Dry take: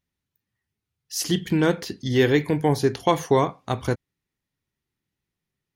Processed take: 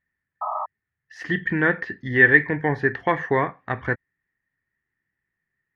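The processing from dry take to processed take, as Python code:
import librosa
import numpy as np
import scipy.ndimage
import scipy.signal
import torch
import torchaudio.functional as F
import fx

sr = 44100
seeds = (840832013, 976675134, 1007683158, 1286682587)

y = fx.spec_paint(x, sr, seeds[0], shape='noise', start_s=0.41, length_s=0.25, low_hz=600.0, high_hz=1300.0, level_db=-27.0)
y = fx.lowpass_res(y, sr, hz=1800.0, q=13.0)
y = y * 10.0 ** (-3.5 / 20.0)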